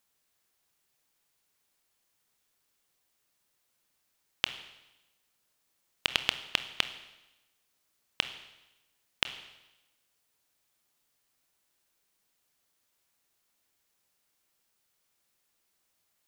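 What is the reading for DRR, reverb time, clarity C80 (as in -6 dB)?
10.0 dB, 1.0 s, 14.0 dB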